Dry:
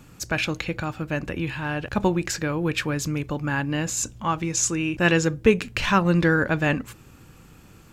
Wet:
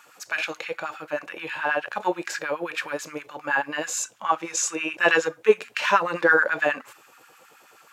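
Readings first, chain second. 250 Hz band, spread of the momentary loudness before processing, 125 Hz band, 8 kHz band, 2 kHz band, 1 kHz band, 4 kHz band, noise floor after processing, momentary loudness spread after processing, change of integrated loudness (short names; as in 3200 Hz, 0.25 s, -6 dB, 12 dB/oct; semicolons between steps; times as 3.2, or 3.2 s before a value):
-11.0 dB, 9 LU, -22.0 dB, -2.5 dB, +3.0 dB, +2.5 dB, -2.0 dB, -55 dBFS, 13 LU, -1.0 dB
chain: harmonic-percussive split percussive -11 dB; LFO high-pass sine 9.4 Hz 520–1600 Hz; gain +3.5 dB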